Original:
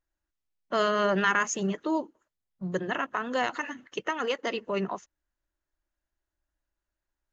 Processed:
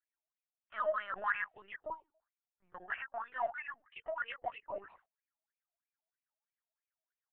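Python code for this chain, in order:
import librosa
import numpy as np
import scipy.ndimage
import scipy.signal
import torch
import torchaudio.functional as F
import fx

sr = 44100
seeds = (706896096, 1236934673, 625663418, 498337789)

p1 = fx.wah_lfo(x, sr, hz=3.1, low_hz=640.0, high_hz=2500.0, q=19.0)
p2 = 10.0 ** (-35.0 / 20.0) * np.tanh(p1 / 10.0 ** (-35.0 / 20.0))
p3 = p1 + (p2 * librosa.db_to_amplitude(-8.0))
p4 = fx.lpc_vocoder(p3, sr, seeds[0], excitation='pitch_kept', order=16)
y = p4 * librosa.db_to_amplitude(3.0)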